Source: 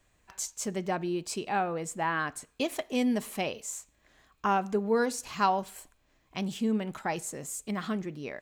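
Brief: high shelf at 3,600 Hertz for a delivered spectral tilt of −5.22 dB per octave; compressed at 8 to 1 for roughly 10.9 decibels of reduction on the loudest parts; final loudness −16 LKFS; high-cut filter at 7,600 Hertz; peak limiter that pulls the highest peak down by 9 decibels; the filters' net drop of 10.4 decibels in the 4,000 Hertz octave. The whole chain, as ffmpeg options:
ffmpeg -i in.wav -af "lowpass=7600,highshelf=frequency=3600:gain=-8.5,equalizer=frequency=4000:width_type=o:gain=-9,acompressor=threshold=-34dB:ratio=8,volume=27dB,alimiter=limit=-6dB:level=0:latency=1" out.wav

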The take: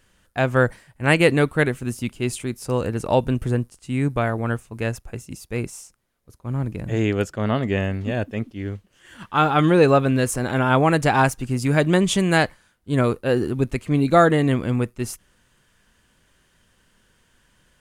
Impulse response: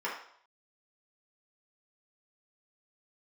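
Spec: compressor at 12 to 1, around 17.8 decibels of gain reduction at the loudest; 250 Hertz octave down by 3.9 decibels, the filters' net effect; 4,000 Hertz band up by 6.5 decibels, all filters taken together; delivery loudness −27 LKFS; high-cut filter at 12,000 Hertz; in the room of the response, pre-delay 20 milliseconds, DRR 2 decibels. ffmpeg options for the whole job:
-filter_complex "[0:a]lowpass=12000,equalizer=frequency=250:width_type=o:gain=-5.5,equalizer=frequency=4000:width_type=o:gain=8.5,acompressor=threshold=-29dB:ratio=12,asplit=2[link_01][link_02];[1:a]atrim=start_sample=2205,adelay=20[link_03];[link_02][link_03]afir=irnorm=-1:irlink=0,volume=-9dB[link_04];[link_01][link_04]amix=inputs=2:normalize=0,volume=6dB"

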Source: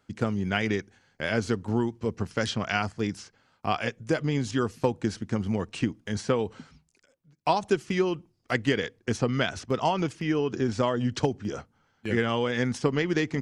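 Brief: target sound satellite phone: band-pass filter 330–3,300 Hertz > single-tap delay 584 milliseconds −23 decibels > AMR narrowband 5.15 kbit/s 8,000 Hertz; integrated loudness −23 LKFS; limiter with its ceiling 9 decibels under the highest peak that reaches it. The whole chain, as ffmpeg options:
ffmpeg -i in.wav -af "alimiter=limit=-18.5dB:level=0:latency=1,highpass=330,lowpass=3300,aecho=1:1:584:0.0708,volume=13dB" -ar 8000 -c:a libopencore_amrnb -b:a 5150 out.amr

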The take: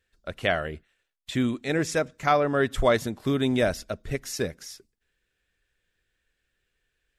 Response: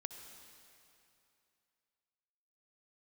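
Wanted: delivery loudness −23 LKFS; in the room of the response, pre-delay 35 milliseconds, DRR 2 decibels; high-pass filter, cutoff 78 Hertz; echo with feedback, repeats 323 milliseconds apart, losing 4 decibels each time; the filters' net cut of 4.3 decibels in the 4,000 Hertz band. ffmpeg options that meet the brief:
-filter_complex "[0:a]highpass=78,equalizer=frequency=4000:width_type=o:gain=-5.5,aecho=1:1:323|646|969|1292|1615|1938|2261|2584|2907:0.631|0.398|0.25|0.158|0.0994|0.0626|0.0394|0.0249|0.0157,asplit=2[link_01][link_02];[1:a]atrim=start_sample=2205,adelay=35[link_03];[link_02][link_03]afir=irnorm=-1:irlink=0,volume=1dB[link_04];[link_01][link_04]amix=inputs=2:normalize=0,volume=0.5dB"

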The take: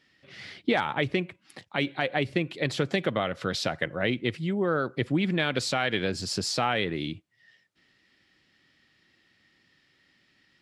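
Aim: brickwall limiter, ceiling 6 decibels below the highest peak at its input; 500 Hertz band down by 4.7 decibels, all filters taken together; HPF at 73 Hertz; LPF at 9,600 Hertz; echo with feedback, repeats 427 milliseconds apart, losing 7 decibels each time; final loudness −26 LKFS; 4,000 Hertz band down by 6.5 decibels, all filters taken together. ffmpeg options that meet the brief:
ffmpeg -i in.wav -af "highpass=73,lowpass=9600,equalizer=frequency=500:width_type=o:gain=-6,equalizer=frequency=4000:width_type=o:gain=-8.5,alimiter=limit=-20dB:level=0:latency=1,aecho=1:1:427|854|1281|1708|2135:0.447|0.201|0.0905|0.0407|0.0183,volume=6.5dB" out.wav

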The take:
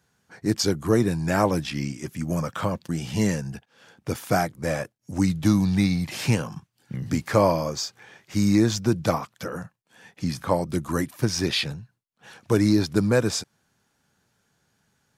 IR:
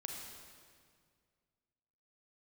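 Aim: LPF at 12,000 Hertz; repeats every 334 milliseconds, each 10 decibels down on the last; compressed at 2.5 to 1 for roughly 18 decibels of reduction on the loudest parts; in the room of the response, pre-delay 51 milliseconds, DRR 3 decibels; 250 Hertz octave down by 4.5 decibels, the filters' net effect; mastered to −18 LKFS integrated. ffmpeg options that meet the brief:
-filter_complex "[0:a]lowpass=12000,equalizer=frequency=250:width_type=o:gain=-6.5,acompressor=threshold=-44dB:ratio=2.5,aecho=1:1:334|668|1002|1336:0.316|0.101|0.0324|0.0104,asplit=2[link_01][link_02];[1:a]atrim=start_sample=2205,adelay=51[link_03];[link_02][link_03]afir=irnorm=-1:irlink=0,volume=-1.5dB[link_04];[link_01][link_04]amix=inputs=2:normalize=0,volume=21.5dB"

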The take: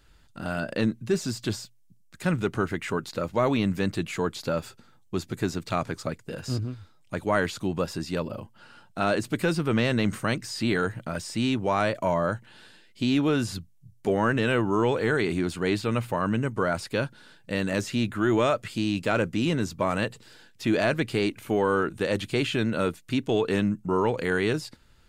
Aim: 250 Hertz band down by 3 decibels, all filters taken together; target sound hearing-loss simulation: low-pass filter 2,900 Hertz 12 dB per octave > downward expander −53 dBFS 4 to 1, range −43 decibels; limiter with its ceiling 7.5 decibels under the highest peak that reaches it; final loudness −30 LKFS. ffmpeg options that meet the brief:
ffmpeg -i in.wav -af "equalizer=frequency=250:width_type=o:gain=-4,alimiter=limit=-18dB:level=0:latency=1,lowpass=2900,agate=range=-43dB:threshold=-53dB:ratio=4,volume=0.5dB" out.wav

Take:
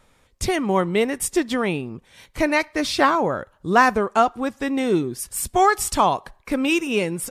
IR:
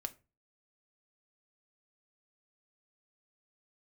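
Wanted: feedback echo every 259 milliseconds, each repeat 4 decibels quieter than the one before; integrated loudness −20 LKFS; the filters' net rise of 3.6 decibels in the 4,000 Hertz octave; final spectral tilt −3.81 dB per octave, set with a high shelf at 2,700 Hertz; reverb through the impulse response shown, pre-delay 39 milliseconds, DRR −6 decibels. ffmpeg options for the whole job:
-filter_complex "[0:a]highshelf=frequency=2700:gain=-4.5,equalizer=frequency=4000:width_type=o:gain=8.5,aecho=1:1:259|518|777|1036|1295|1554|1813|2072|2331:0.631|0.398|0.25|0.158|0.0994|0.0626|0.0394|0.0249|0.0157,asplit=2[link_01][link_02];[1:a]atrim=start_sample=2205,adelay=39[link_03];[link_02][link_03]afir=irnorm=-1:irlink=0,volume=8dB[link_04];[link_01][link_04]amix=inputs=2:normalize=0,volume=-8dB"

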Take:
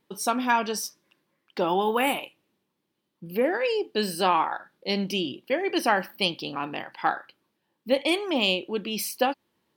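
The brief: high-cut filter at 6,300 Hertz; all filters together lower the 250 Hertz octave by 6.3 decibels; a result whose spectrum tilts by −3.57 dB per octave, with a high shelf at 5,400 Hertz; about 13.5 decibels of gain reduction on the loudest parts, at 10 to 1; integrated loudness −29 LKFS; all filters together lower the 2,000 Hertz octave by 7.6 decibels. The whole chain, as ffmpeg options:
ffmpeg -i in.wav -af "lowpass=6300,equalizer=frequency=250:width_type=o:gain=-8.5,equalizer=frequency=2000:width_type=o:gain=-9,highshelf=frequency=5400:gain=-7.5,acompressor=threshold=-35dB:ratio=10,volume=11.5dB" out.wav

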